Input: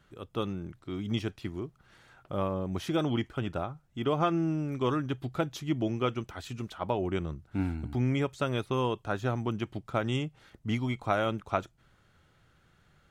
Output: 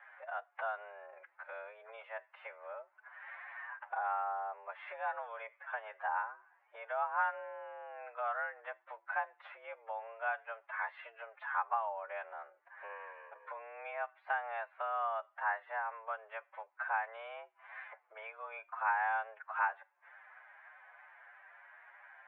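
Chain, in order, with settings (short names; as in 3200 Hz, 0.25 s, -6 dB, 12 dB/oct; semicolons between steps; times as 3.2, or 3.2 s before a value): time stretch by phase-locked vocoder 1.7×; compressor 3:1, threshold -48 dBFS, peak gain reduction 19 dB; mistuned SSB +220 Hz 510–2000 Hz; gain +13.5 dB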